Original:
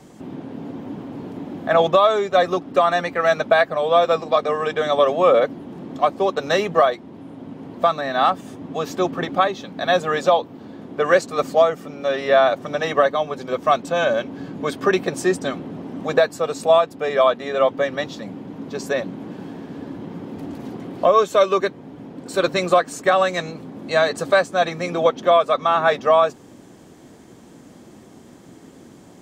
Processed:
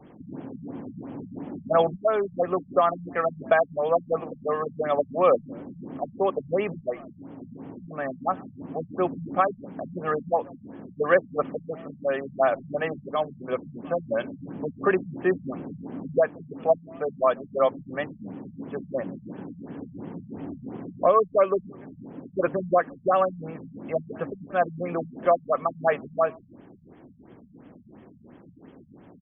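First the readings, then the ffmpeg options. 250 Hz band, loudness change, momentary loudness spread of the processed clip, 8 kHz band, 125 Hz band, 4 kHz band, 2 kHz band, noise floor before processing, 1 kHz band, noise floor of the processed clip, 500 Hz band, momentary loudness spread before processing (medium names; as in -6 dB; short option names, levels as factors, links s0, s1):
-5.0 dB, -7.0 dB, 16 LU, under -40 dB, -4.0 dB, under -15 dB, -9.5 dB, -45 dBFS, -7.5 dB, -51 dBFS, -6.5 dB, 17 LU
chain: -filter_complex "[0:a]asplit=2[s0][s1];[s1]adelay=180,highpass=300,lowpass=3400,asoftclip=type=hard:threshold=0.224,volume=0.0562[s2];[s0][s2]amix=inputs=2:normalize=0,afftfilt=real='re*lt(b*sr/1024,200*pow(3500/200,0.5+0.5*sin(2*PI*2.9*pts/sr)))':imag='im*lt(b*sr/1024,200*pow(3500/200,0.5+0.5*sin(2*PI*2.9*pts/sr)))':win_size=1024:overlap=0.75,volume=0.631"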